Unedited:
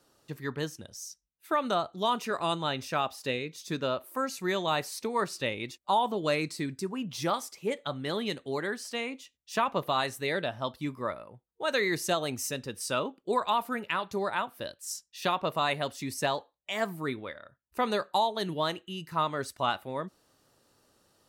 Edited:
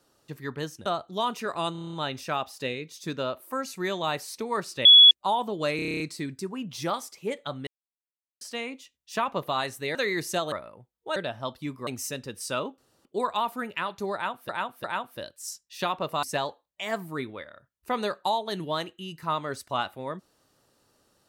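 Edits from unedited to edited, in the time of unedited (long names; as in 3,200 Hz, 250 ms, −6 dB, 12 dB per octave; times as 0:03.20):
0:00.86–0:01.71: remove
0:02.57: stutter 0.03 s, 8 plays
0:05.49–0:05.75: beep over 3,380 Hz −9 dBFS
0:06.40: stutter 0.03 s, 9 plays
0:08.07–0:08.81: silence
0:10.35–0:11.06: swap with 0:11.70–0:12.27
0:13.18: splice in room tone 0.27 s
0:14.27–0:14.62: repeat, 3 plays
0:15.66–0:16.12: remove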